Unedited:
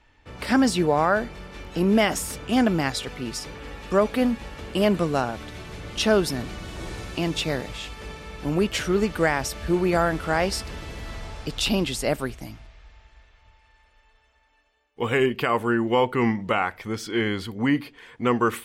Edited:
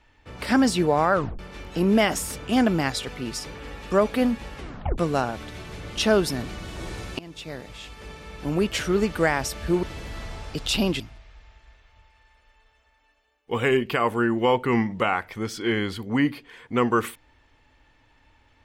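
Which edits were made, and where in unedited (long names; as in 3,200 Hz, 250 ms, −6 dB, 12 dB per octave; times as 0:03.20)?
0:01.13: tape stop 0.26 s
0:04.56: tape stop 0.42 s
0:07.19–0:09.14: fade in equal-power, from −20.5 dB
0:09.83–0:10.75: remove
0:11.92–0:12.49: remove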